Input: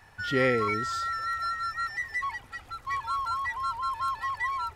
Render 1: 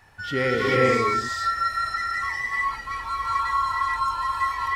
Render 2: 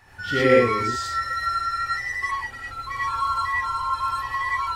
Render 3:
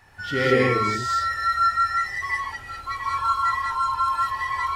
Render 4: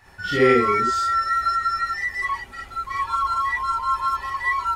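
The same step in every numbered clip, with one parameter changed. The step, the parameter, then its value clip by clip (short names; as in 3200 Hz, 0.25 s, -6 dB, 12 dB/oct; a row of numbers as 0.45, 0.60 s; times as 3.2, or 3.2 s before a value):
non-linear reverb, gate: 470, 140, 230, 80 ms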